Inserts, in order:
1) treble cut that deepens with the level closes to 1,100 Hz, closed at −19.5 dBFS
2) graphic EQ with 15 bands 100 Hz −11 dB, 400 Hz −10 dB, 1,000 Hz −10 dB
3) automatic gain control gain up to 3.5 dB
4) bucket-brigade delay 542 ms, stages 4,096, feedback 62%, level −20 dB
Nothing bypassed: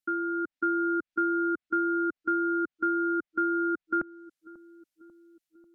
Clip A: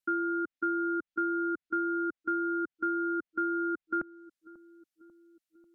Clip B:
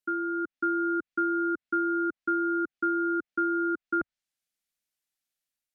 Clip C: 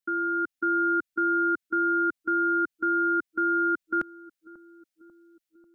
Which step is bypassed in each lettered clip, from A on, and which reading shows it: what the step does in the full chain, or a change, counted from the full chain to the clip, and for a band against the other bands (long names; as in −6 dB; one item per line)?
3, change in momentary loudness spread −1 LU
4, echo-to-direct ratio −22.5 dB to none audible
1, change in crest factor −2.5 dB